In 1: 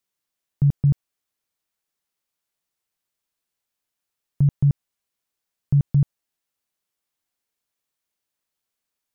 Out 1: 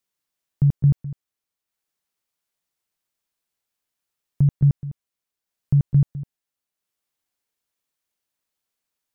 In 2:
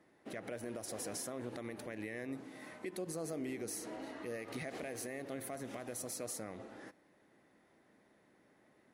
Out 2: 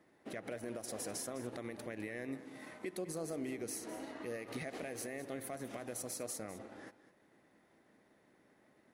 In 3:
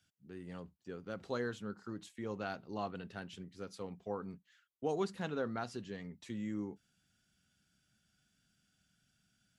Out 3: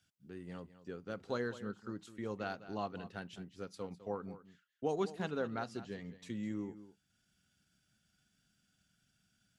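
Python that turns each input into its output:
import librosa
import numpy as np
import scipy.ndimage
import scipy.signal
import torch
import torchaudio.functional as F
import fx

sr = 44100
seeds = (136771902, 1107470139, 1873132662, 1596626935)

p1 = fx.transient(x, sr, attack_db=1, sustain_db=-4)
y = p1 + fx.echo_single(p1, sr, ms=205, db=-14.5, dry=0)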